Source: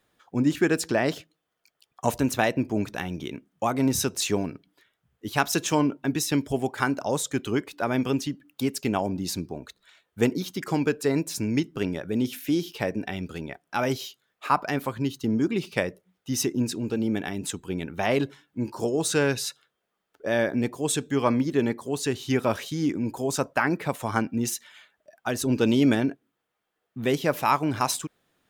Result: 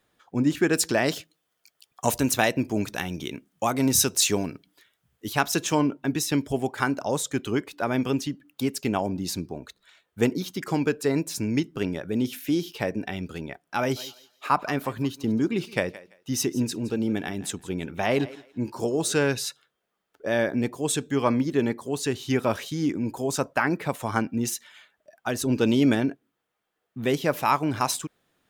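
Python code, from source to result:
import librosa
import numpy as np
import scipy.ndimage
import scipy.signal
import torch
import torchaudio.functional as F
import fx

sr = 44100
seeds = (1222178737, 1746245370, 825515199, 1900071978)

y = fx.high_shelf(x, sr, hz=3200.0, db=8.5, at=(0.73, 5.33))
y = fx.echo_thinned(y, sr, ms=168, feedback_pct=21, hz=330.0, wet_db=-17, at=(13.96, 19.12), fade=0.02)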